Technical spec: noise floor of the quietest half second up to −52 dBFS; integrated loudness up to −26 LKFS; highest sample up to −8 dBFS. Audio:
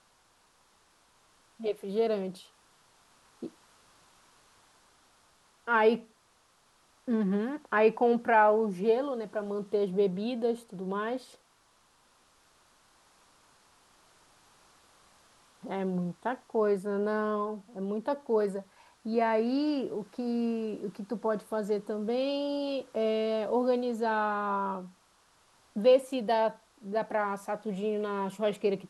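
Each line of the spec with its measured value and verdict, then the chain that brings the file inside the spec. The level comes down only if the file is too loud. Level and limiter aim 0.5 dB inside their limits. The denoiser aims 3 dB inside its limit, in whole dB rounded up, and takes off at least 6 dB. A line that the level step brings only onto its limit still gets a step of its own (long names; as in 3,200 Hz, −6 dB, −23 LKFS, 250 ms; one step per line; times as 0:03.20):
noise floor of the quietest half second −66 dBFS: in spec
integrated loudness −30.0 LKFS: in spec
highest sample −12.0 dBFS: in spec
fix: no processing needed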